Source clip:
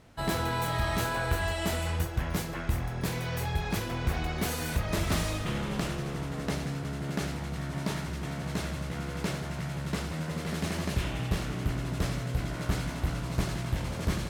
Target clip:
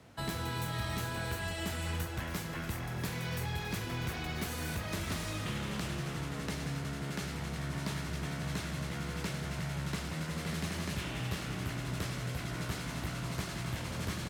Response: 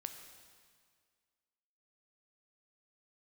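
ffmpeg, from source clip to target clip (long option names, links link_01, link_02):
-filter_complex "[0:a]acrossover=split=120|400|1000|2400[link_01][link_02][link_03][link_04][link_05];[link_01]acompressor=threshold=-38dB:ratio=4[link_06];[link_02]acompressor=threshold=-40dB:ratio=4[link_07];[link_03]acompressor=threshold=-51dB:ratio=4[link_08];[link_04]acompressor=threshold=-45dB:ratio=4[link_09];[link_05]acompressor=threshold=-43dB:ratio=4[link_10];[link_06][link_07][link_08][link_09][link_10]amix=inputs=5:normalize=0,highpass=67,asplit=2[link_11][link_12];[link_12]aecho=0:1:277|554|831|1108|1385|1662:0.237|0.128|0.0691|0.0373|0.0202|0.0109[link_13];[link_11][link_13]amix=inputs=2:normalize=0"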